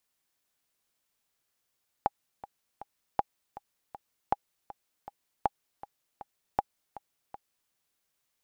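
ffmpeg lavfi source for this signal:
-f lavfi -i "aevalsrc='pow(10,(-11-17.5*gte(mod(t,3*60/159),60/159))/20)*sin(2*PI*815*mod(t,60/159))*exp(-6.91*mod(t,60/159)/0.03)':d=5.66:s=44100"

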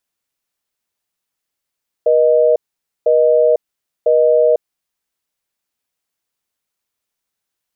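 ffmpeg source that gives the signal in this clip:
-f lavfi -i "aevalsrc='0.266*(sin(2*PI*480*t)+sin(2*PI*620*t))*clip(min(mod(t,1),0.5-mod(t,1))/0.005,0,1)':d=2.7:s=44100"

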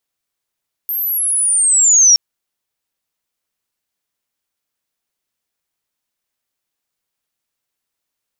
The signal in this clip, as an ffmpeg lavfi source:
-f lavfi -i "aevalsrc='pow(10,(-17.5+12.5*t/1.27)/20)*sin(2*PI*(13000*t-7500*t*t/(2*1.27)))':d=1.27:s=44100"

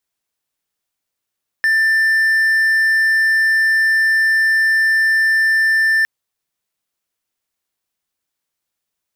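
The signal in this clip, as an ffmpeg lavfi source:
-f lavfi -i "aevalsrc='0.335*(1-4*abs(mod(1780*t+0.25,1)-0.5))':d=4.41:s=44100"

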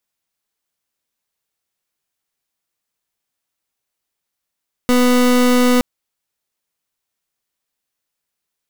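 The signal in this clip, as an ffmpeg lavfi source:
-f lavfi -i "aevalsrc='0.237*(2*lt(mod(248*t,1),0.3)-1)':d=0.92:s=44100"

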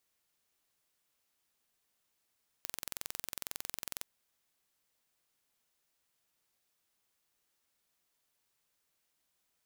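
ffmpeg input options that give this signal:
-f lavfi -i "aevalsrc='0.282*eq(mod(n,2005),0)':d=1.4:s=44100"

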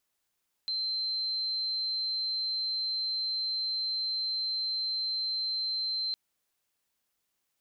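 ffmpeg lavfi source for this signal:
-f lavfi -i "aevalsrc='0.0355*sin(2*PI*4110*t)':d=5.46:s=44100"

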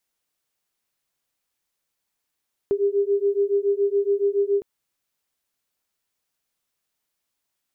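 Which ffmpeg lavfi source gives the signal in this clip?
-f lavfi -i "aevalsrc='0.0841*(sin(2*PI*398*t)+sin(2*PI*405.1*t))':d=1.91:s=44100"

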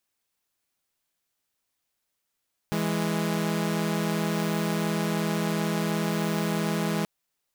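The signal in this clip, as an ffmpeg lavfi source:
-f lavfi -i "aevalsrc='0.0562*((2*mod(164.81*t,1)-1)+(2*mod(207.65*t,1)-1))':d=4.33:s=44100"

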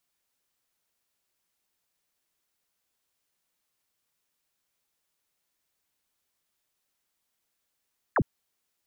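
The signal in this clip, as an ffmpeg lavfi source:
-f lavfi -i "aevalsrc='0.1*clip(t/0.002,0,1)*clip((0.06-t)/0.002,0,1)*sin(2*PI*2000*0.06/log(87/2000)*(exp(log(87/2000)*t/0.06)-1))':d=0.06:s=44100"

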